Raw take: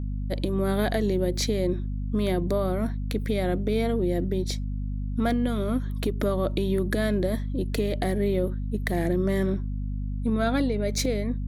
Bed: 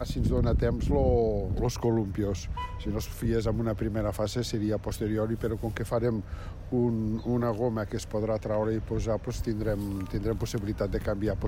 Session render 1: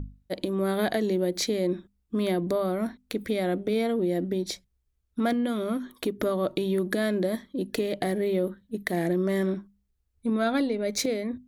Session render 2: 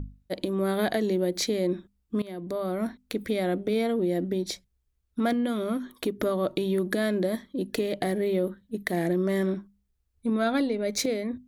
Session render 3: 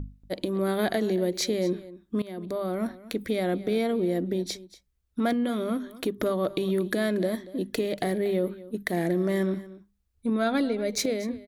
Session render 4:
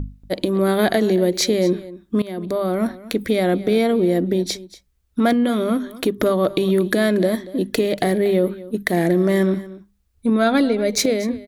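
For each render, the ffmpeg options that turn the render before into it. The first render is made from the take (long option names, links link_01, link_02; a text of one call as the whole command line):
ffmpeg -i in.wav -af "bandreject=frequency=50:width_type=h:width=6,bandreject=frequency=100:width_type=h:width=6,bandreject=frequency=150:width_type=h:width=6,bandreject=frequency=200:width_type=h:width=6,bandreject=frequency=250:width_type=h:width=6" out.wav
ffmpeg -i in.wav -filter_complex "[0:a]asplit=2[link_01][link_02];[link_01]atrim=end=2.22,asetpts=PTS-STARTPTS,afade=type=out:start_time=2.216:duration=0.004:curve=hsin:silence=0.105925[link_03];[link_02]atrim=start=2.22,asetpts=PTS-STARTPTS,afade=type=in:duration=0.63:silence=0.105925[link_04];[link_03][link_04]concat=n=2:v=0:a=1" out.wav
ffmpeg -i in.wav -af "aecho=1:1:235:0.126" out.wav
ffmpeg -i in.wav -af "volume=8.5dB" out.wav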